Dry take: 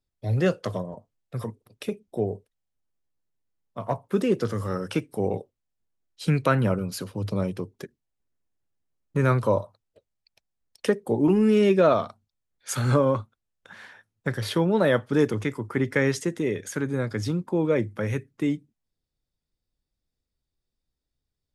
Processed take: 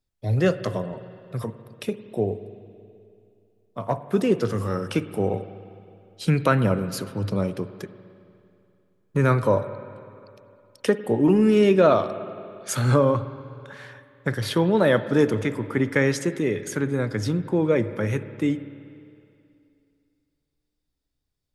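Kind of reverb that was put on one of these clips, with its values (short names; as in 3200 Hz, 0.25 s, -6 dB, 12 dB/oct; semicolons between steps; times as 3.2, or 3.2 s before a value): spring tank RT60 2.6 s, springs 50/57 ms, chirp 50 ms, DRR 12.5 dB; gain +2 dB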